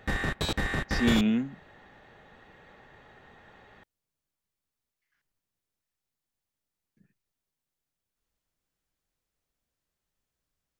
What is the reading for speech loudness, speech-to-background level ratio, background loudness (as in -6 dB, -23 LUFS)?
-27.0 LUFS, 3.5 dB, -30.5 LUFS